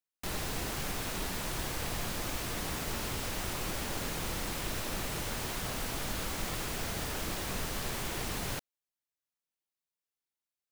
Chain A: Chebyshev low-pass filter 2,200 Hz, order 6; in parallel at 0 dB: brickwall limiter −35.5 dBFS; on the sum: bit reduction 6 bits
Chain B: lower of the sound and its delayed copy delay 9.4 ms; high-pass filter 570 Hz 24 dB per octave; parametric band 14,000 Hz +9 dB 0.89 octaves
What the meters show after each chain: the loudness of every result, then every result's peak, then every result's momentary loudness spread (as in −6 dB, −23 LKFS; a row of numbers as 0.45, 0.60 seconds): −34.0, −34.0 LKFS; −24.0, −23.5 dBFS; 0, 0 LU